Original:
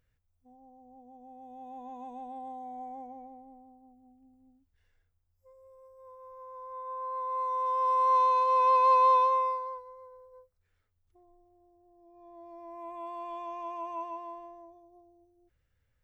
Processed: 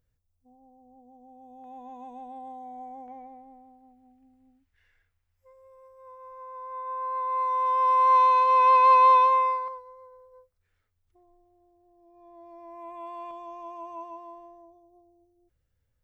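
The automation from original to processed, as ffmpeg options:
-af "asetnsamples=n=441:p=0,asendcmd='1.64 equalizer g 1.5;3.08 equalizer g 12.5;9.68 equalizer g 2.5;13.31 equalizer g -7',equalizer=f=2k:t=o:w=1.6:g=-8.5"

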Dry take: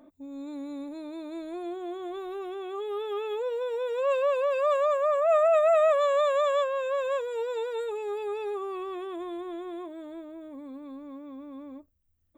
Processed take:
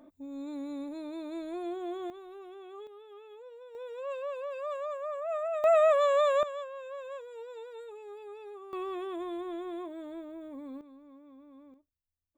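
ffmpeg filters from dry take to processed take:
-af "asetnsamples=n=441:p=0,asendcmd='2.1 volume volume -11dB;2.87 volume volume -18.5dB;3.75 volume volume -11.5dB;5.64 volume volume -1dB;6.43 volume volume -13dB;8.73 volume volume -1dB;10.81 volume volume -11.5dB;11.74 volume volume -19dB',volume=-1dB"

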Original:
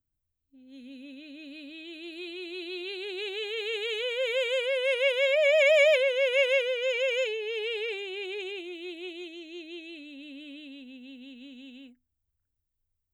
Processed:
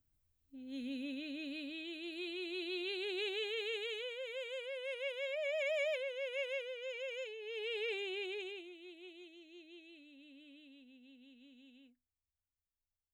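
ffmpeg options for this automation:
-af "volume=15.5dB,afade=t=out:st=0.82:d=1.18:silence=0.421697,afade=t=out:st=3.18:d=1.05:silence=0.251189,afade=t=in:st=7.35:d=0.72:silence=0.266073,afade=t=out:st=8.07:d=0.68:silence=0.298538"

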